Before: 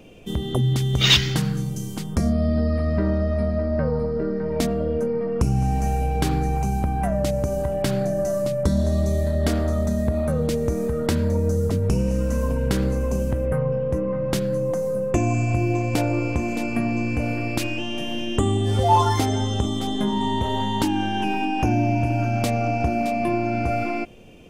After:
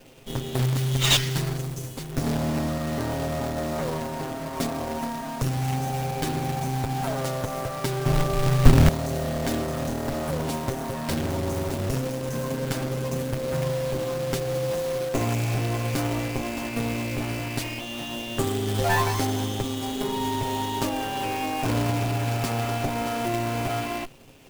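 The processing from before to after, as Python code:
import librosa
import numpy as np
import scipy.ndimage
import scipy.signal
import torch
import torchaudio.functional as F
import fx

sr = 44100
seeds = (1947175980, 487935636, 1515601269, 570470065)

y = fx.lower_of_two(x, sr, delay_ms=7.5)
y = fx.tilt_eq(y, sr, slope=-4.5, at=(8.06, 8.89))
y = fx.quant_companded(y, sr, bits=4)
y = y * librosa.db_to_amplitude(-3.0)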